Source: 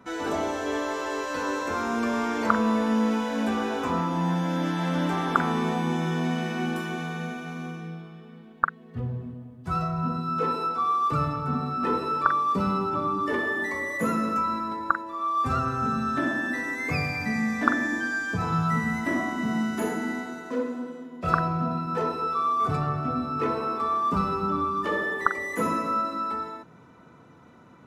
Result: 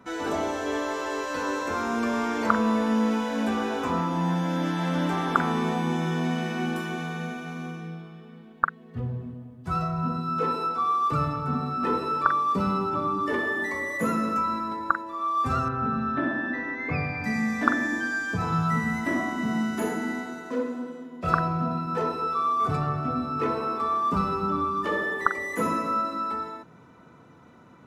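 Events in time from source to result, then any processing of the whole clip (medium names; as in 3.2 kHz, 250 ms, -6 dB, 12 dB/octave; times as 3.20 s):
15.68–17.24 s: Gaussian low-pass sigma 2.4 samples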